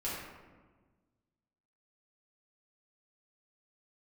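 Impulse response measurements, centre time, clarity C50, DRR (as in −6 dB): 81 ms, −0.5 dB, −9.0 dB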